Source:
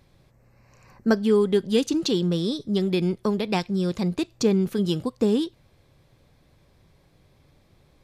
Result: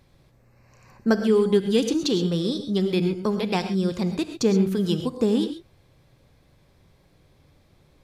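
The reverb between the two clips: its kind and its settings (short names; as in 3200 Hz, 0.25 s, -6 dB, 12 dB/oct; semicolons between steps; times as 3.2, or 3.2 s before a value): non-linear reverb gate 0.15 s rising, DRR 8.5 dB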